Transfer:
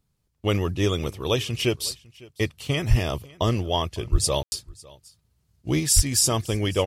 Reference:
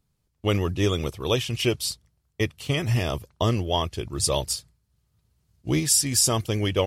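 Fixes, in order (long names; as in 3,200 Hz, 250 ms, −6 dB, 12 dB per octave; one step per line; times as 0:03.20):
clipped peaks rebuilt −8.5 dBFS
0:02.89–0:03.01: high-pass filter 140 Hz 24 dB per octave
0:04.11–0:04.23: high-pass filter 140 Hz 24 dB per octave
0:05.95–0:06.07: high-pass filter 140 Hz 24 dB per octave
ambience match 0:04.43–0:04.52
echo removal 553 ms −23 dB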